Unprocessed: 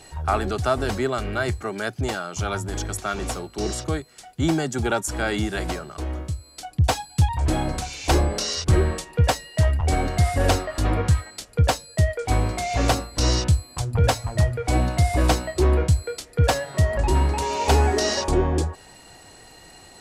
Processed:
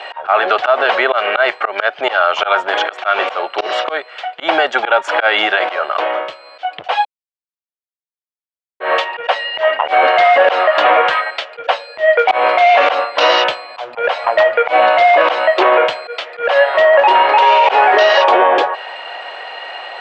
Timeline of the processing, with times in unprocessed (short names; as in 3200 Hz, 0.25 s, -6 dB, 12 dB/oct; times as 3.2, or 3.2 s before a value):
7.05–8.8 mute
whole clip: elliptic band-pass 570–3100 Hz, stop band 80 dB; auto swell 0.153 s; maximiser +24 dB; gain -1 dB